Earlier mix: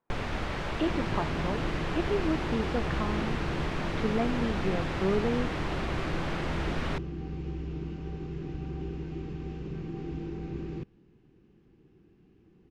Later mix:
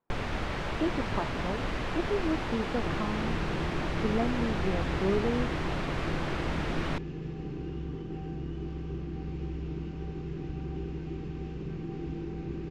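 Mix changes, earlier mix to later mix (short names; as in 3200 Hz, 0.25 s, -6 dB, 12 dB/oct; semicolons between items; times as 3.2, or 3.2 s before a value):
speech: add air absorption 350 m; second sound: entry +1.95 s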